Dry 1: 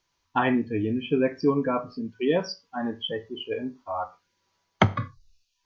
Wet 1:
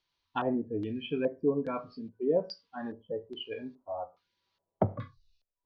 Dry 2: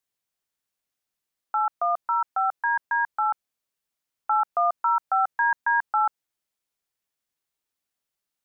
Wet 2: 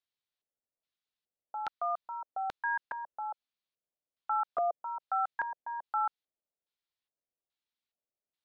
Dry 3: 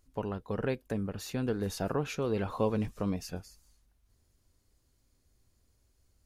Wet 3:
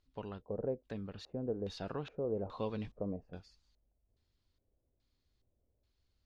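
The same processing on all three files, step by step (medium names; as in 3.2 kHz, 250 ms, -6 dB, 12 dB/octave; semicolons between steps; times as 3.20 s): LFO low-pass square 1.2 Hz 590–3900 Hz; trim -9 dB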